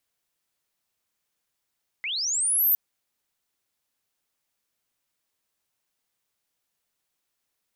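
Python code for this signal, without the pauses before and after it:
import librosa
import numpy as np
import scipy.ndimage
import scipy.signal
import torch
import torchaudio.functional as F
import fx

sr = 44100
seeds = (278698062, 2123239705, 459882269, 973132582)

y = fx.chirp(sr, length_s=0.71, from_hz=2000.0, to_hz=14000.0, law='linear', from_db=-27.5, to_db=-17.0)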